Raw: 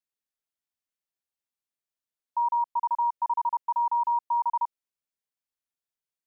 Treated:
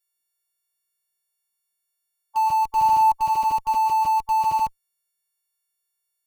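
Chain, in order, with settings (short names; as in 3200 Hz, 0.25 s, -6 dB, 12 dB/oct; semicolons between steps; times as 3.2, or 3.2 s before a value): frequency quantiser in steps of 4 st; dynamic EQ 950 Hz, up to +4 dB, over -36 dBFS, Q 2.5; in parallel at -7 dB: Schmitt trigger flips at -29.5 dBFS; 2.7–3.12 on the sum: flutter echo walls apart 7 m, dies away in 0.41 s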